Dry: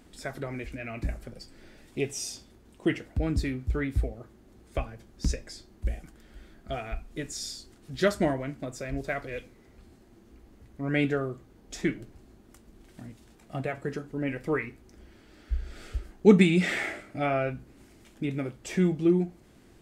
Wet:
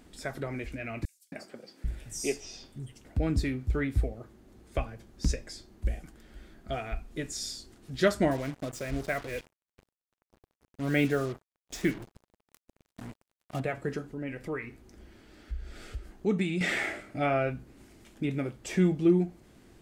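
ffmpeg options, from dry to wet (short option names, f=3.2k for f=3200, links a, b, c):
-filter_complex "[0:a]asettb=1/sr,asplit=3[a][b][c];[a]atrim=end=1.054[d];[b]atrim=start=1.05:end=3.05,asetpts=PTS-STARTPTS,afade=t=in:d=0.004:c=qsin,afade=t=out:st=1.996:d=0.004:c=qsin,acrossover=split=190|4700[e][f][g];[f]adelay=270[h];[e]adelay=790[i];[i][h][g]amix=inputs=3:normalize=0,atrim=end_sample=88200[j];[c]atrim=start=3.046[k];[d][j]acrossfade=d=0.004:c1=hsin:c2=qsin[l];[l][k]acrossfade=d=0.004:c1=qsin:c2=hsin,asettb=1/sr,asplit=3[m][n][o];[m]atrim=end=8.314[p];[n]atrim=start=8.31:end=13.6,asetpts=PTS-STARTPTS,afade=t=in:d=0.004:c=qsin,afade=t=out:st=5.286:d=0.004:c=qsin,acrusher=bits=6:mix=0:aa=0.5[q];[o]atrim=start=13.596[r];[p][q]acrossfade=d=0.004:c1=hsin:c2=qsin[s];[s][r]acrossfade=d=0.004:c1=qsin:c2=hsin,asettb=1/sr,asplit=3[t][u][v];[t]atrim=end=14.104[w];[u]atrim=start=14.1:end=16.61,asetpts=PTS-STARTPTS,afade=t=in:d=0.004:c=qsin,afade=t=out:st=2.506:d=0.004:c=qsin,acompressor=threshold=-42dB:ratio=1.5:attack=3.2:release=140:knee=1:detection=peak[x];[v]atrim=start=16.606[y];[w][x]acrossfade=d=0.004:c1=hsin:c2=qsin[z];[z][y]acrossfade=d=0.004:c1=qsin:c2=hsin"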